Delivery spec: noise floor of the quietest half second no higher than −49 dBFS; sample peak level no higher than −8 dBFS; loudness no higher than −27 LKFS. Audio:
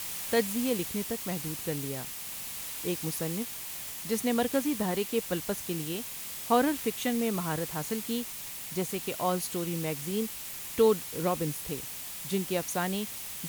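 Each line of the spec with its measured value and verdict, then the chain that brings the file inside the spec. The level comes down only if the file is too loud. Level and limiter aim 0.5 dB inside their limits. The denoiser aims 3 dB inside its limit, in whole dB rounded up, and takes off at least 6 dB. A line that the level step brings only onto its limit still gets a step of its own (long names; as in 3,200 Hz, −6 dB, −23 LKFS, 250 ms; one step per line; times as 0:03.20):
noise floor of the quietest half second −40 dBFS: out of spec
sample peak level −12.0 dBFS: in spec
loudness −31.0 LKFS: in spec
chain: broadband denoise 12 dB, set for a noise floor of −40 dBFS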